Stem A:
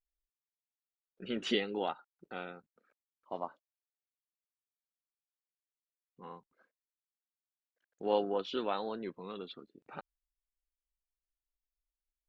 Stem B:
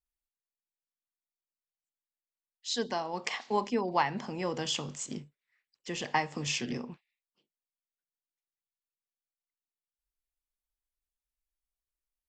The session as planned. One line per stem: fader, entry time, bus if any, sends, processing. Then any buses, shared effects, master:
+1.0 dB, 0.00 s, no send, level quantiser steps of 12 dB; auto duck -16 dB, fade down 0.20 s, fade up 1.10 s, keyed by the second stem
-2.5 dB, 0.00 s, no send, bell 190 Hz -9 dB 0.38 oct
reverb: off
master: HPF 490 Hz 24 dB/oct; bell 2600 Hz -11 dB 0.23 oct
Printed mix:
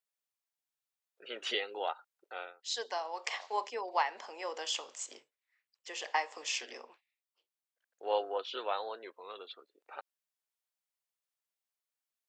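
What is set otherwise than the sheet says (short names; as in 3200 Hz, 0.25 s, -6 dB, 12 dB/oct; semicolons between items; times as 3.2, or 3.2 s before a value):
stem A: missing level quantiser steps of 12 dB; master: missing bell 2600 Hz -11 dB 0.23 oct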